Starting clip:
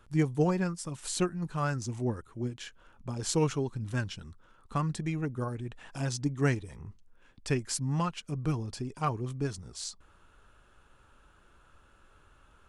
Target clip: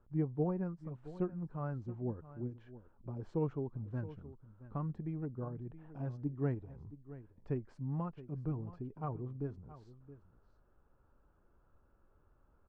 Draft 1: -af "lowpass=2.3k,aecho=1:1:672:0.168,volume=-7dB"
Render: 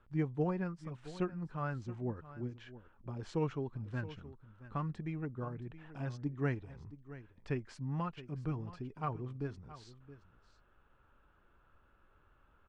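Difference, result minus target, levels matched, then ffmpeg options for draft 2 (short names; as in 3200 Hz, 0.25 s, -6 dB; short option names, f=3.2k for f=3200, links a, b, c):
2000 Hz band +11.0 dB
-af "lowpass=820,aecho=1:1:672:0.168,volume=-7dB"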